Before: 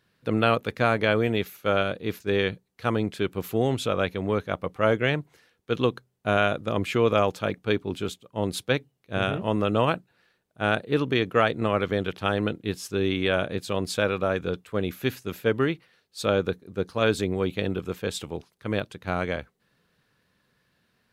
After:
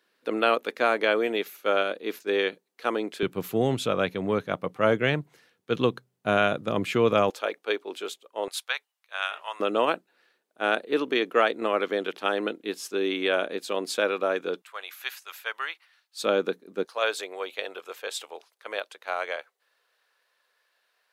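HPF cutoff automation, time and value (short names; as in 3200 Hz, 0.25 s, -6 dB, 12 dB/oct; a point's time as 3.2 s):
HPF 24 dB/oct
290 Hz
from 3.23 s 120 Hz
from 7.3 s 400 Hz
from 8.48 s 890 Hz
from 9.6 s 280 Hz
from 14.62 s 840 Hz
from 16.22 s 240 Hz
from 16.85 s 540 Hz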